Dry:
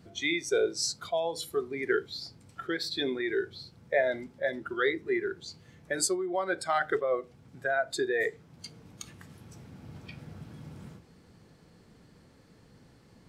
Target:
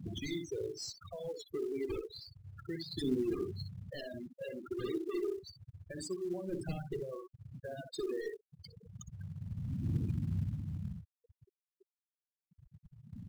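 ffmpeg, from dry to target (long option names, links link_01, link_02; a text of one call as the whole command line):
ffmpeg -i in.wav -filter_complex "[0:a]asplit=2[link_01][link_02];[link_02]acompressor=threshold=-38dB:ratio=8,volume=-1dB[link_03];[link_01][link_03]amix=inputs=2:normalize=0,aphaser=in_gain=1:out_gain=1:delay=2.8:decay=0.61:speed=0.3:type=triangular,aeval=exprs='0.0891*(abs(mod(val(0)/0.0891+3,4)-2)-1)':channel_layout=same,asplit=2[link_04][link_05];[link_05]adelay=62,lowpass=frequency=4700:poles=1,volume=-5dB,asplit=2[link_06][link_07];[link_07]adelay=62,lowpass=frequency=4700:poles=1,volume=0.18,asplit=2[link_08][link_09];[link_09]adelay=62,lowpass=frequency=4700:poles=1,volume=0.18[link_10];[link_06][link_08][link_10]amix=inputs=3:normalize=0[link_11];[link_04][link_11]amix=inputs=2:normalize=0,acrossover=split=350|3000[link_12][link_13][link_14];[link_13]acompressor=threshold=-45dB:ratio=3[link_15];[link_12][link_15][link_14]amix=inputs=3:normalize=0,highshelf=frequency=6500:gain=-7,afftfilt=real='re*gte(hypot(re,im),0.0355)':imag='im*gte(hypot(re,im),0.0355)':win_size=1024:overlap=0.75,acrusher=bits=5:mode=log:mix=0:aa=0.000001,tiltshelf=frequency=640:gain=5.5,volume=-6dB" out.wav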